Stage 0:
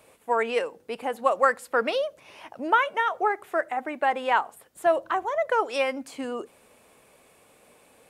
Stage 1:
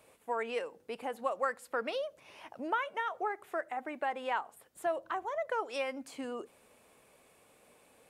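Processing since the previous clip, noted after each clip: compression 1.5:1, threshold -32 dBFS, peak gain reduction 6.5 dB; trim -6 dB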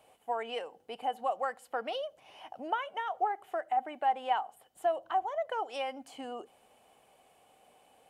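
small resonant body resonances 760/3000 Hz, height 14 dB, ringing for 25 ms; trim -4 dB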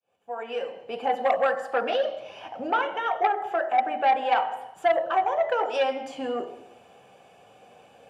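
fade-in on the opening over 1.09 s; reverberation RT60 0.85 s, pre-delay 3 ms, DRR 3.5 dB; transformer saturation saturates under 1.1 kHz; trim +2 dB

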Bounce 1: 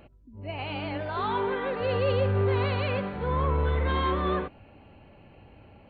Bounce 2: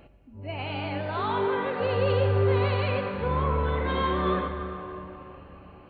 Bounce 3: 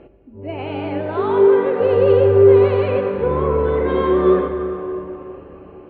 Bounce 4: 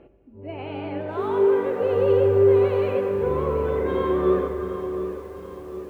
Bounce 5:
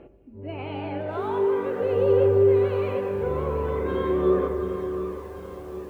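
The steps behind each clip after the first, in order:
plate-style reverb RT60 3.7 s, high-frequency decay 0.55×, DRR 4.5 dB
low-pass 2.8 kHz 12 dB/octave; peaking EQ 390 Hz +14.5 dB 1 oct; trim +2 dB
bit-crushed delay 736 ms, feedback 55%, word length 7-bit, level -12.5 dB; trim -6.5 dB
in parallel at -2 dB: compression, threshold -28 dBFS, peak gain reduction 14 dB; on the sum: phaser 0.45 Hz, delay 1.5 ms, feedback 25%; trim -4.5 dB

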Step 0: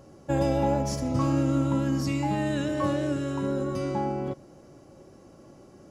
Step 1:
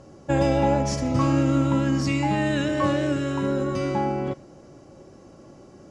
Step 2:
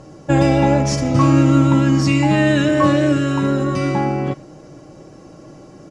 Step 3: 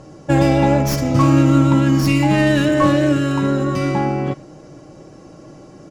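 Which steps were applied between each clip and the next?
low-pass 8.9 kHz 24 dB/octave; dynamic bell 2.2 kHz, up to +5 dB, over -50 dBFS, Q 0.99; trim +3.5 dB
comb 6.5 ms, depth 42%; trim +6.5 dB
tracing distortion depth 0.069 ms

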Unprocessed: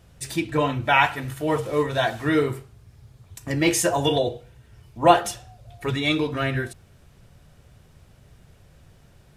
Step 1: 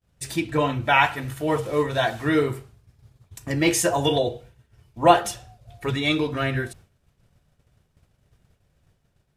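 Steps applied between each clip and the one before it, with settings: expander -42 dBFS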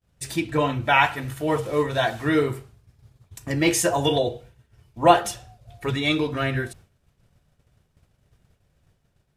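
no audible change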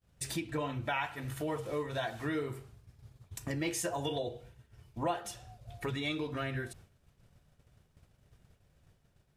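compression 3:1, threshold -34 dBFS, peak gain reduction 18 dB; trim -2 dB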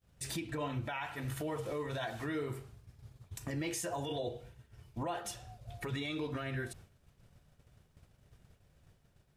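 peak limiter -30 dBFS, peak gain reduction 8.5 dB; trim +1 dB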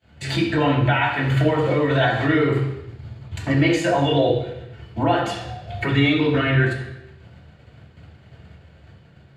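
reverberation RT60 0.85 s, pre-delay 3 ms, DRR -3 dB; trim +4.5 dB

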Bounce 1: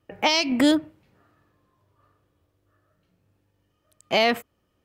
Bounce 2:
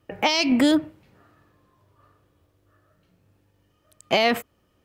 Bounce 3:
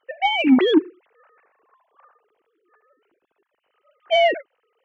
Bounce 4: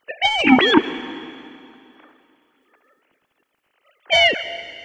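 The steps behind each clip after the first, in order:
peak limiter -15.5 dBFS, peak gain reduction 6.5 dB; trim +5 dB
formants replaced by sine waves; in parallel at -4 dB: saturation -16.5 dBFS, distortion -12 dB
spectral peaks clipped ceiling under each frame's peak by 21 dB; plate-style reverb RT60 2.6 s, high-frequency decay 0.95×, pre-delay 110 ms, DRR 13.5 dB; trim +2.5 dB

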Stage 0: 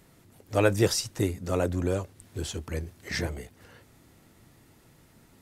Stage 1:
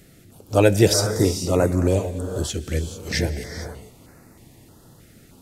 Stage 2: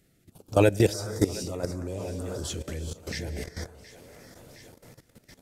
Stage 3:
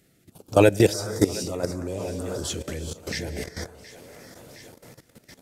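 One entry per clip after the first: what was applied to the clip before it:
gated-style reverb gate 480 ms rising, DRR 7.5 dB; step-sequenced notch 3.2 Hz 980–3200 Hz; trim +8 dB
two-band feedback delay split 460 Hz, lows 125 ms, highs 717 ms, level -15.5 dB; level held to a coarse grid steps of 16 dB; trim -1.5 dB
bass shelf 77 Hz -10 dB; trim +4.5 dB

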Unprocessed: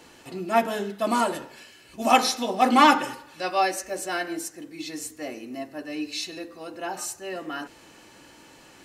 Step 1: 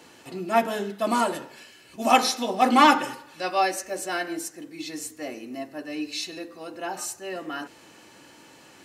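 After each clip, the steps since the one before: high-pass 91 Hz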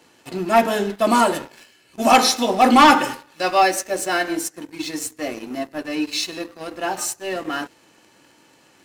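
waveshaping leveller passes 2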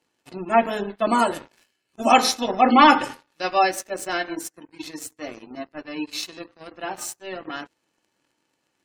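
power-law waveshaper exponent 1.4; spectral gate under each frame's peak -30 dB strong

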